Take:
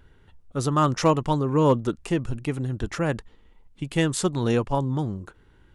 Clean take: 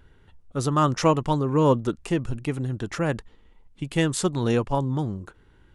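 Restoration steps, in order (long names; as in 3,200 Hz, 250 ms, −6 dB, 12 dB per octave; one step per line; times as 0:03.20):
clipped peaks rebuilt −10 dBFS
0:02.80–0:02.92: high-pass filter 140 Hz 24 dB per octave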